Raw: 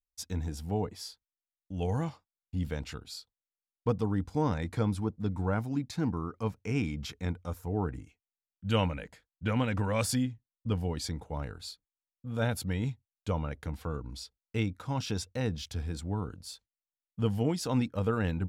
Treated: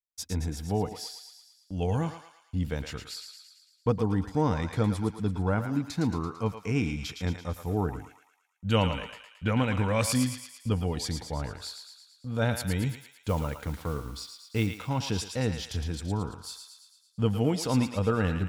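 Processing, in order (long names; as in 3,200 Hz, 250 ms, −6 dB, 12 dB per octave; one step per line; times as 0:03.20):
noise gate with hold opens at −50 dBFS
0:12.89–0:14.67: noise that follows the level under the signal 24 dB
feedback echo with a high-pass in the loop 112 ms, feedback 60%, high-pass 920 Hz, level −6 dB
level +3 dB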